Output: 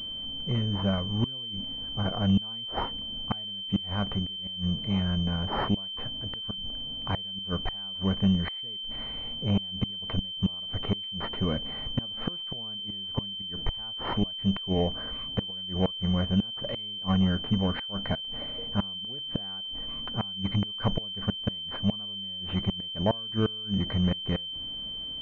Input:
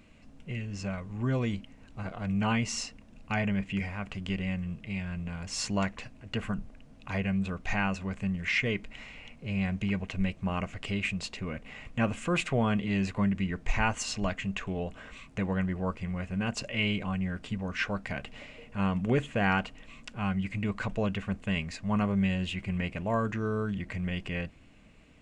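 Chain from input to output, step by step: inverted gate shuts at -22 dBFS, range -29 dB; class-D stage that switches slowly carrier 3.1 kHz; trim +8 dB

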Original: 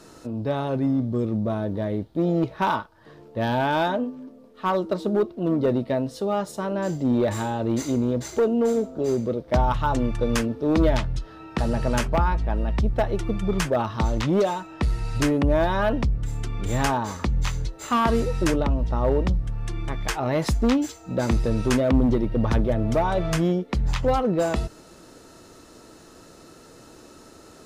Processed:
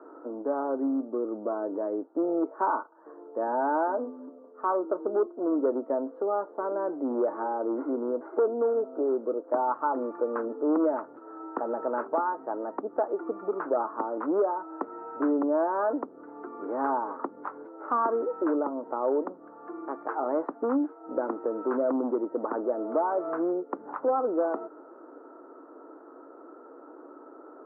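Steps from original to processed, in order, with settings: Chebyshev band-pass 280–1400 Hz, order 4; in parallel at +3 dB: compression, threshold -32 dBFS, peak gain reduction 14 dB; on the sum: trim -5.5 dB

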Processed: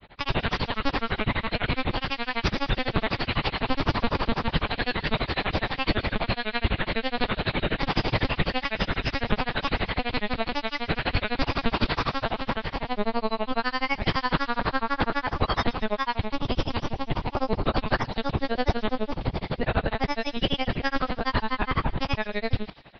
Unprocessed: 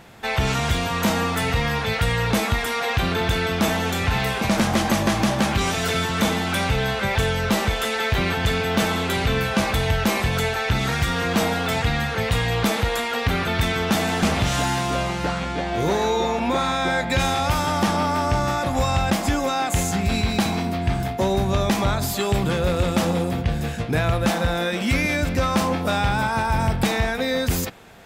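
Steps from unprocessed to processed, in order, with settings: monotone LPC vocoder at 8 kHz 200 Hz; granulator, grains 9.8 per s, spray 14 ms, pitch spread up and down by 3 st; feedback echo behind a high-pass 135 ms, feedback 59%, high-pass 2.4 kHz, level -15 dB; tape speed +22%

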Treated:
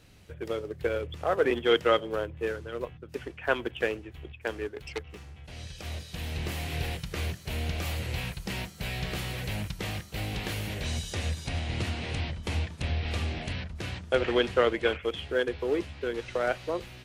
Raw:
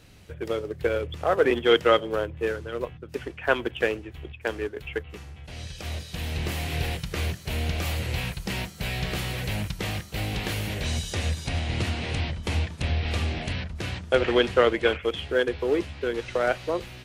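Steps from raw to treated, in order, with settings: 4.76–5.36 s: self-modulated delay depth 0.32 ms; trim -4 dB

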